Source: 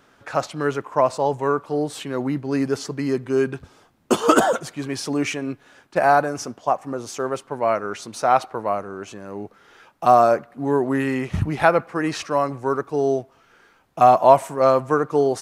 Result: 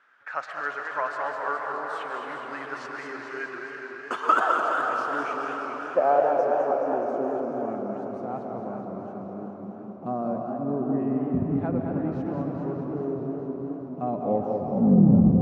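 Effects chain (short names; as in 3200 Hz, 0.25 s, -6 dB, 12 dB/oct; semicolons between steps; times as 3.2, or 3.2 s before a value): tape stop at the end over 1.36 s; band-pass sweep 1600 Hz -> 200 Hz, 3.97–7.86; on a send at -2 dB: reverb RT60 5.5 s, pre-delay 0.111 s; on the sum: warbling echo 0.21 s, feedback 73%, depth 177 cents, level -6.5 dB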